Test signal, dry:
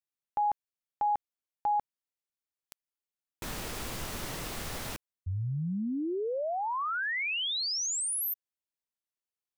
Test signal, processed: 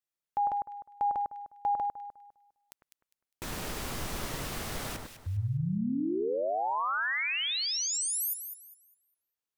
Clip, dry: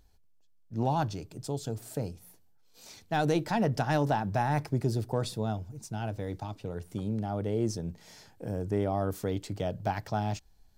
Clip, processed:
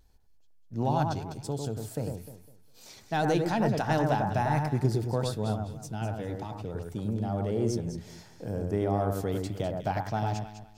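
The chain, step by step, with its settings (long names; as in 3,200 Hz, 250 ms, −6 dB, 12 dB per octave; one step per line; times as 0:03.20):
pitch vibrato 1.6 Hz 34 cents
delay that swaps between a low-pass and a high-pass 101 ms, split 1,800 Hz, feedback 52%, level −3.5 dB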